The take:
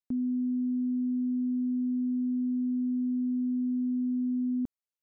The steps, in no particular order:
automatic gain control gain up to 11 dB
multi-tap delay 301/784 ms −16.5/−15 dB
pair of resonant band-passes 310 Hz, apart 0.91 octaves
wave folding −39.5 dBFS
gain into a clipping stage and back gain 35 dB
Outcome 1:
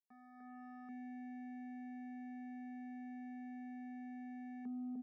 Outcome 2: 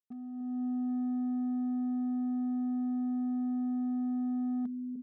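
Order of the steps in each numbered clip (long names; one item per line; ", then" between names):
multi-tap delay, then wave folding, then automatic gain control, then gain into a clipping stage and back, then pair of resonant band-passes
multi-tap delay, then gain into a clipping stage and back, then pair of resonant band-passes, then wave folding, then automatic gain control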